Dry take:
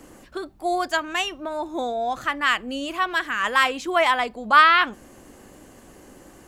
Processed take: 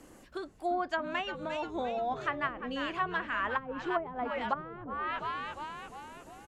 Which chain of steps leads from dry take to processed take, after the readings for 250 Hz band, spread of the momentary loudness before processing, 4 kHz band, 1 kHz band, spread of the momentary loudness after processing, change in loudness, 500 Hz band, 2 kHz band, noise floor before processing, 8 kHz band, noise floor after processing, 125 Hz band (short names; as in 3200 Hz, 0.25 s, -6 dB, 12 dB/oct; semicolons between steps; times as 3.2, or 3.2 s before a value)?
-7.0 dB, 14 LU, -16.5 dB, -12.0 dB, 11 LU, -13.5 dB, -8.0 dB, -14.0 dB, -49 dBFS, under -20 dB, -56 dBFS, n/a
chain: frequency-shifting echo 0.348 s, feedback 54%, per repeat -98 Hz, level -10 dB; treble ducked by the level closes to 310 Hz, closed at -14 dBFS; gain -7.5 dB